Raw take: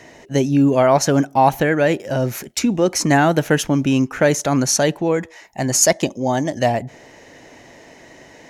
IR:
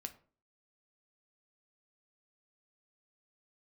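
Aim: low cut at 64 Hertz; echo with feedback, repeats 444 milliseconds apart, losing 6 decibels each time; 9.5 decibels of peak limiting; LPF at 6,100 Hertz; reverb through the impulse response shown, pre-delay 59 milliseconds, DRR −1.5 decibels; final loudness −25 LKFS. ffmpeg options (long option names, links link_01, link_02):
-filter_complex "[0:a]highpass=64,lowpass=6100,alimiter=limit=-11.5dB:level=0:latency=1,aecho=1:1:444|888|1332|1776|2220|2664:0.501|0.251|0.125|0.0626|0.0313|0.0157,asplit=2[link_01][link_02];[1:a]atrim=start_sample=2205,adelay=59[link_03];[link_02][link_03]afir=irnorm=-1:irlink=0,volume=5dB[link_04];[link_01][link_04]amix=inputs=2:normalize=0,volume=-8dB"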